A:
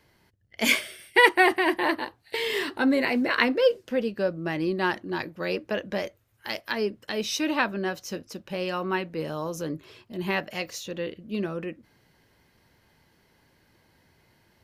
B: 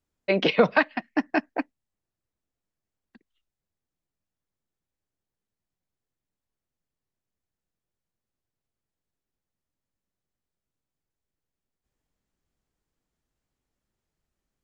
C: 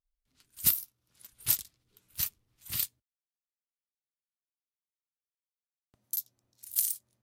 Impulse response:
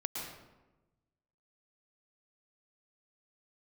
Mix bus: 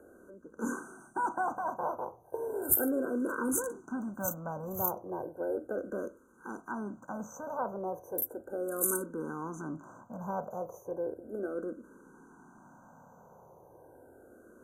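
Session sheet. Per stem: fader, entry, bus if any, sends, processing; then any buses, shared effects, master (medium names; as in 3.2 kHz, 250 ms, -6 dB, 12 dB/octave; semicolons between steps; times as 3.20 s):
-8.5 dB, 0.00 s, no send, spectral levelling over time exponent 0.6; treble shelf 3.6 kHz -9 dB
-16.0 dB, 0.00 s, no send, auto duck -10 dB, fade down 0.25 s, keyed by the first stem
0.0 dB, 2.05 s, no send, none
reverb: none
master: brick-wall FIR band-stop 1.6–5.9 kHz; barber-pole phaser -0.35 Hz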